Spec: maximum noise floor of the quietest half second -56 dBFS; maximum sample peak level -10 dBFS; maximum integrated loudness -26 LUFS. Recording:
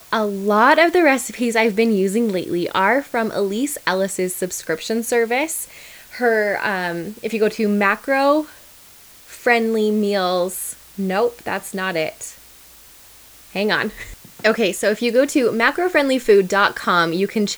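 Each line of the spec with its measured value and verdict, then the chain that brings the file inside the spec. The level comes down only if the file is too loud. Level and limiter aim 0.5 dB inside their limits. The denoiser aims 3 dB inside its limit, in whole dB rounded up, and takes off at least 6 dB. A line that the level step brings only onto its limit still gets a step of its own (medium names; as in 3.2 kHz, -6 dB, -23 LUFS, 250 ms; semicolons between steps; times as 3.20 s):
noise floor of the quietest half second -45 dBFS: fail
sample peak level -2.0 dBFS: fail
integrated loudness -18.5 LUFS: fail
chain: noise reduction 6 dB, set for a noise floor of -45 dBFS; trim -8 dB; peak limiter -10.5 dBFS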